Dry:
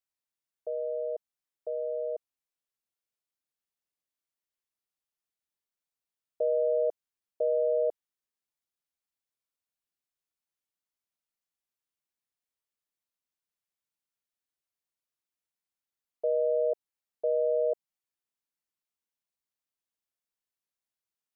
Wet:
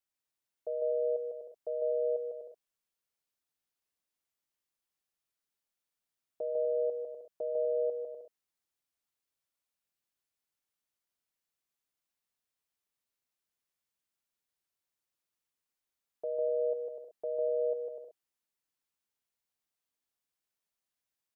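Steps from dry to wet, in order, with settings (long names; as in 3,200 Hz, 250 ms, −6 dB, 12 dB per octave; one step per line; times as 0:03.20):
brickwall limiter −28.5 dBFS, peak gain reduction 8.5 dB
on a send: bouncing-ball delay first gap 150 ms, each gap 0.65×, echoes 5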